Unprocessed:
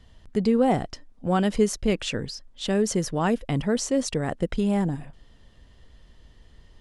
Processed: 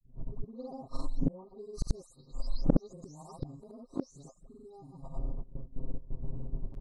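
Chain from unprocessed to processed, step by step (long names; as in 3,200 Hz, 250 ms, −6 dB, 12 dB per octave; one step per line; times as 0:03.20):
every frequency bin delayed by itself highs late, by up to 351 ms
noise gate with hold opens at −42 dBFS
brick-wall band-stop 1,300–3,800 Hz
low-pass that shuts in the quiet parts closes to 350 Hz, open at −22.5 dBFS
comb filter 7.5 ms, depth 96%
in parallel at −3 dB: downward compressor 5 to 1, threshold −39 dBFS, peak gain reduction 23.5 dB
on the sum: gate with flip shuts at −22 dBFS, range −39 dB
granular cloud, pitch spread up and down by 0 semitones
echo ahead of the sound 37 ms −17 dB
highs frequency-modulated by the lows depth 0.58 ms
level +12 dB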